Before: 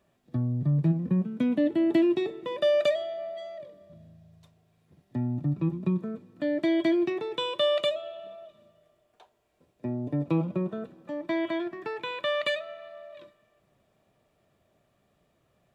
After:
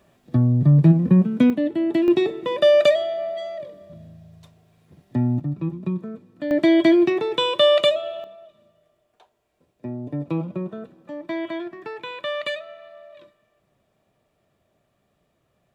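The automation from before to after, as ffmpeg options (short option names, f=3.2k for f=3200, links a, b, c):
-af "asetnsamples=n=441:p=0,asendcmd='1.5 volume volume 2dB;2.08 volume volume 8.5dB;5.4 volume volume 1dB;6.51 volume volume 9dB;8.24 volume volume 0.5dB',volume=10.5dB"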